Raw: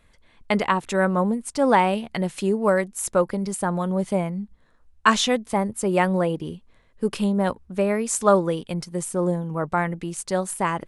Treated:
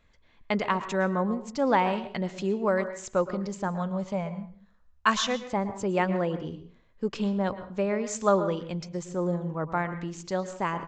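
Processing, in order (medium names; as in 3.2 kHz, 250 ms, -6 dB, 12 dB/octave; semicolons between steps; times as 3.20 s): 3.68–5.42 s: peaking EQ 330 Hz -14.5 dB 0.42 oct; resampled via 16 kHz; on a send: treble shelf 3.5 kHz -7.5 dB + reverberation RT60 0.45 s, pre-delay 103 ms, DRR 11 dB; on the sum: trim -5.5 dB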